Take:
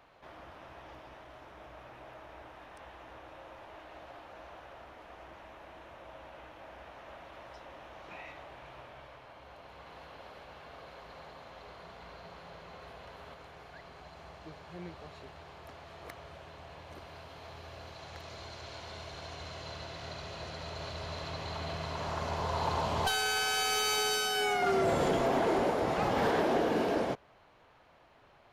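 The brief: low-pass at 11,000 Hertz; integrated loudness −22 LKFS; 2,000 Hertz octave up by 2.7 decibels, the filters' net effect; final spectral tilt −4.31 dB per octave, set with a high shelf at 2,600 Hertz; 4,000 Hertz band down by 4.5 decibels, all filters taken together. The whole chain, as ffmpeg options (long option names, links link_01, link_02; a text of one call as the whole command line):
ffmpeg -i in.wav -af "lowpass=11000,equalizer=frequency=2000:width_type=o:gain=6.5,highshelf=frequency=2600:gain=-3.5,equalizer=frequency=4000:width_type=o:gain=-6,volume=10.5dB" out.wav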